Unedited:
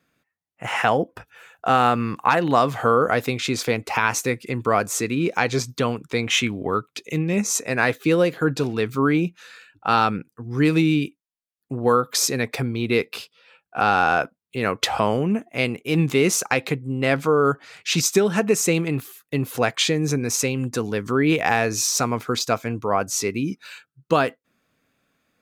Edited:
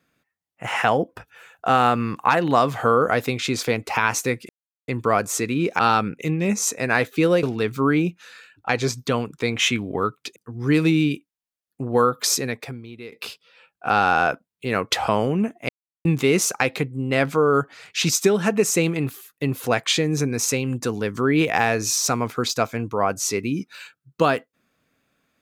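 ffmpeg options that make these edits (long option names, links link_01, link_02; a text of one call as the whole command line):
ffmpeg -i in.wav -filter_complex "[0:a]asplit=10[link_01][link_02][link_03][link_04][link_05][link_06][link_07][link_08][link_09][link_10];[link_01]atrim=end=4.49,asetpts=PTS-STARTPTS,afade=type=out:start_time=4.486:duration=0.004:curve=hsin,apad=pad_dur=0.39[link_11];[link_02]atrim=start=4.49:end=5.402,asetpts=PTS-STARTPTS,afade=type=in:duration=0.004:curve=hsin[link_12];[link_03]atrim=start=9.868:end=10.272[link_13];[link_04]atrim=start=7.068:end=8.312[link_14];[link_05]atrim=start=8.608:end=9.872[link_15];[link_06]atrim=start=5.398:end=7.072[link_16];[link_07]atrim=start=10.268:end=13.03,asetpts=PTS-STARTPTS,afade=type=out:start_time=1.982:duration=0.78:curve=qua:silence=0.11885[link_17];[link_08]atrim=start=13.03:end=15.6,asetpts=PTS-STARTPTS,afade=type=in:duration=0.004:curve=hsin:silence=0.11885,afade=type=out:start_time=2.566:duration=0.004:curve=hsin[link_18];[link_09]atrim=start=15.6:end=15.96,asetpts=PTS-STARTPTS,volume=0[link_19];[link_10]atrim=start=15.96,asetpts=PTS-STARTPTS,afade=type=in:duration=0.004:curve=hsin[link_20];[link_11][link_12]concat=n=2:v=0:a=1[link_21];[link_21][link_13]acrossfade=duration=0.004:curve1=hsin:curve2=hsin[link_22];[link_22][link_14]acrossfade=duration=0.004:curve1=hsin:curve2=hsin[link_23];[link_23][link_15]acrossfade=duration=0.004:curve1=hsin:curve2=hsin[link_24];[link_24][link_16]acrossfade=duration=0.004:curve1=hsin:curve2=hsin[link_25];[link_17][link_18][link_19][link_20]concat=n=4:v=0:a=1[link_26];[link_25][link_26]acrossfade=duration=0.004:curve1=hsin:curve2=hsin" out.wav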